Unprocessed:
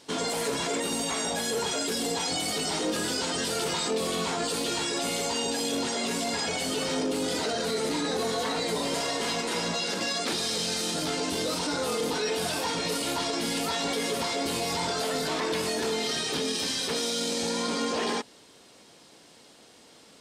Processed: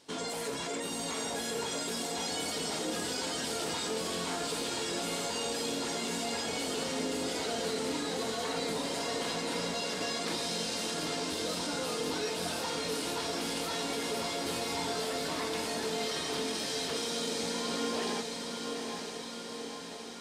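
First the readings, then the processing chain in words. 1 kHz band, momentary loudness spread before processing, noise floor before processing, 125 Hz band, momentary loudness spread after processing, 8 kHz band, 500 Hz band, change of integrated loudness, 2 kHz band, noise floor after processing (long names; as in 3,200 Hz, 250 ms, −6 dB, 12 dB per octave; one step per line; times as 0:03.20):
−5.0 dB, 1 LU, −54 dBFS, −5.5 dB, 3 LU, −5.0 dB, −5.0 dB, −5.5 dB, −5.0 dB, −41 dBFS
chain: feedback delay with all-pass diffusion 892 ms, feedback 66%, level −5 dB
level −7 dB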